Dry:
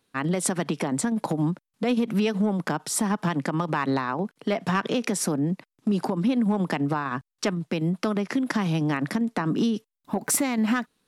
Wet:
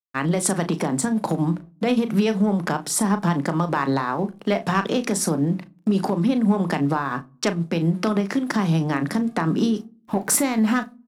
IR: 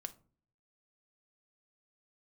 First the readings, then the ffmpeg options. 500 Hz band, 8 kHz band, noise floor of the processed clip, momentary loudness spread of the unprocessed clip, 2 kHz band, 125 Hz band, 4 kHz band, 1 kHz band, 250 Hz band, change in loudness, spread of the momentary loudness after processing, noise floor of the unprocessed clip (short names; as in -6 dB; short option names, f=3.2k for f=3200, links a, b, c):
+3.5 dB, +4.0 dB, -53 dBFS, 5 LU, +2.5 dB, +4.5 dB, +2.5 dB, +4.0 dB, +3.5 dB, +3.5 dB, 5 LU, -85 dBFS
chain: -filter_complex "[0:a]bandreject=f=60:t=h:w=6,bandreject=f=120:t=h:w=6,bandreject=f=180:t=h:w=6,bandreject=f=240:t=h:w=6,bandreject=f=300:t=h:w=6,bandreject=f=360:t=h:w=6,adynamicequalizer=threshold=0.00355:dfrequency=2600:dqfactor=1.6:tfrequency=2600:tqfactor=1.6:attack=5:release=100:ratio=0.375:range=3:mode=cutabove:tftype=bell,aeval=exprs='sgn(val(0))*max(abs(val(0))-0.00211,0)':c=same,asplit=2[a][b];[b]adelay=36,volume=-11dB[c];[a][c]amix=inputs=2:normalize=0,asplit=2[d][e];[1:a]atrim=start_sample=2205[f];[e][f]afir=irnorm=-1:irlink=0,volume=-1dB[g];[d][g]amix=inputs=2:normalize=0"